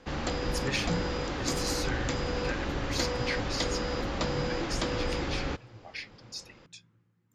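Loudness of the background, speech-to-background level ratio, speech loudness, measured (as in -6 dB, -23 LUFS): -32.5 LUFS, -4.5 dB, -37.0 LUFS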